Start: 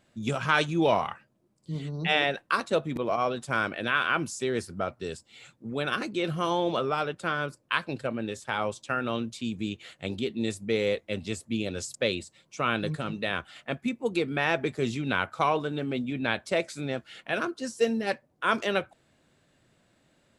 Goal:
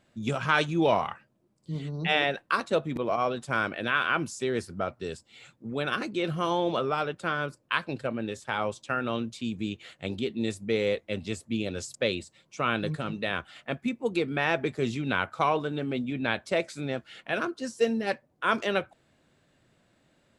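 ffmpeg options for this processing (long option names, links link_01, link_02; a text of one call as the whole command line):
ffmpeg -i in.wav -af "highshelf=frequency=6200:gain=-4.5" out.wav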